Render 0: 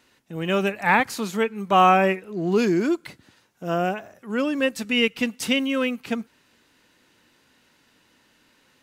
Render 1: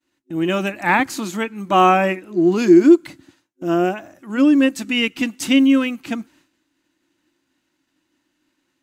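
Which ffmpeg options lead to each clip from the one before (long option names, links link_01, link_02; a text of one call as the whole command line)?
ffmpeg -i in.wav -af "agate=range=-33dB:threshold=-51dB:ratio=3:detection=peak,superequalizer=6b=3.55:7b=0.501:15b=1.41,volume=2dB" out.wav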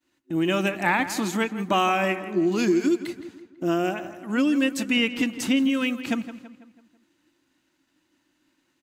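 ffmpeg -i in.wav -filter_complex "[0:a]acrossover=split=2100[link_01][link_02];[link_01]acompressor=threshold=-20dB:ratio=6[link_03];[link_02]alimiter=limit=-20dB:level=0:latency=1:release=289[link_04];[link_03][link_04]amix=inputs=2:normalize=0,asplit=2[link_05][link_06];[link_06]adelay=165,lowpass=frequency=3300:poles=1,volume=-12.5dB,asplit=2[link_07][link_08];[link_08]adelay=165,lowpass=frequency=3300:poles=1,volume=0.49,asplit=2[link_09][link_10];[link_10]adelay=165,lowpass=frequency=3300:poles=1,volume=0.49,asplit=2[link_11][link_12];[link_12]adelay=165,lowpass=frequency=3300:poles=1,volume=0.49,asplit=2[link_13][link_14];[link_14]adelay=165,lowpass=frequency=3300:poles=1,volume=0.49[link_15];[link_05][link_07][link_09][link_11][link_13][link_15]amix=inputs=6:normalize=0" out.wav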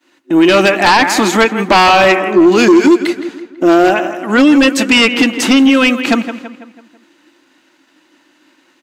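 ffmpeg -i in.wav -af "highpass=320,aeval=exprs='0.398*sin(PI/2*3.55*val(0)/0.398)':channel_layout=same,highshelf=frequency=7000:gain=-11,volume=5dB" out.wav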